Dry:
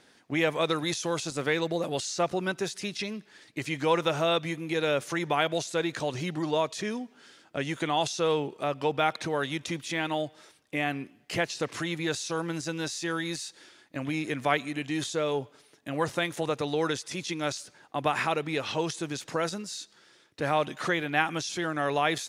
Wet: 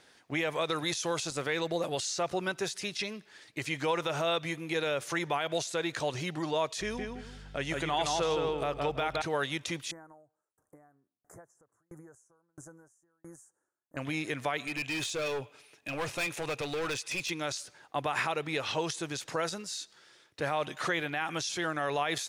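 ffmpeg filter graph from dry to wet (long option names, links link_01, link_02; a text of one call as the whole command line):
ffmpeg -i in.wav -filter_complex "[0:a]asettb=1/sr,asplit=3[link_01][link_02][link_03];[link_01]atrim=end=6.814[link_04];[link_02]atrim=start=6.81:end=9.22,asetpts=PTS-STARTPTS,afade=type=in:duration=0.004:curve=qsin,afade=type=out:start_time=2.406:duration=0.004:curve=qsin,aeval=exprs='val(0)+0.00562*(sin(2*PI*50*n/s)+sin(2*PI*2*50*n/s)/2+sin(2*PI*3*50*n/s)/3+sin(2*PI*4*50*n/s)/4+sin(2*PI*5*50*n/s)/5)':channel_layout=same,asplit=2[link_05][link_06];[link_06]adelay=166,lowpass=frequency=3000:poles=1,volume=-3.5dB,asplit=2[link_07][link_08];[link_08]adelay=166,lowpass=frequency=3000:poles=1,volume=0.27,asplit=2[link_09][link_10];[link_10]adelay=166,lowpass=frequency=3000:poles=1,volume=0.27,asplit=2[link_11][link_12];[link_12]adelay=166,lowpass=frequency=3000:poles=1,volume=0.27[link_13];[link_05][link_07][link_09][link_11][link_13]amix=inputs=5:normalize=0,atrim=end_sample=106281[link_14];[link_03]atrim=start=9.216[link_15];[link_04][link_14]acrossfade=duration=0.004:curve1=hsin:curve2=qsin[link_16];[link_16][link_15]acrossfade=duration=0.004:curve1=qsin:curve2=hsin,asettb=1/sr,asplit=3[link_17][link_18][link_19];[link_17]atrim=end=9.914[link_20];[link_18]atrim=start=9.91:end=13.97,asetpts=PTS-STARTPTS,afade=type=in:duration=0.004:curve=qsin,afade=type=out:start_time=4.056:duration=0.004:curve=qsin,acompressor=threshold=-37dB:ratio=4:attack=3.2:release=140:knee=1:detection=peak,asuperstop=centerf=3300:order=8:qfactor=0.6,aeval=exprs='val(0)*pow(10,-39*if(lt(mod(1.5*n/s,1),2*abs(1.5)/1000),1-mod(1.5*n/s,1)/(2*abs(1.5)/1000),(mod(1.5*n/s,1)-2*abs(1.5)/1000)/(1-2*abs(1.5)/1000))/20)':channel_layout=same[link_21];[link_19]atrim=start=13.966[link_22];[link_20][link_21]acrossfade=duration=0.004:curve1=hsin:curve2=qsin[link_23];[link_23][link_22]acrossfade=duration=0.004:curve1=qsin:curve2=hsin,asettb=1/sr,asplit=3[link_24][link_25][link_26];[link_24]atrim=end=14.674[link_27];[link_25]atrim=start=14.67:end=17.3,asetpts=PTS-STARTPTS,afade=type=in:duration=0.004:curve=qsin,afade=type=out:start_time=2.626:duration=0.004:curve=qsin,equalizer=frequency=2500:width=7.2:gain=13.5,volume=28.5dB,asoftclip=hard,volume=-28.5dB[link_28];[link_26]atrim=start=17.296[link_29];[link_27][link_28]acrossfade=duration=0.004:curve1=hsin:curve2=qsin[link_30];[link_30][link_29]acrossfade=duration=0.004:curve1=qsin:curve2=hsin,equalizer=frequency=230:width_type=o:width=1.3:gain=-6.5,alimiter=limit=-19.5dB:level=0:latency=1:release=63" out.wav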